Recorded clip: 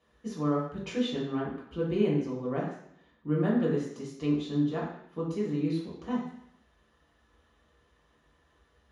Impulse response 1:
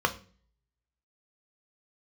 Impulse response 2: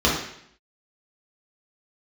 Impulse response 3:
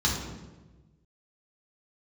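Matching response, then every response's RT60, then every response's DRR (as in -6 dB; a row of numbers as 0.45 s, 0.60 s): 2; 0.40 s, 0.70 s, 1.2 s; 5.5 dB, -6.0 dB, -4.5 dB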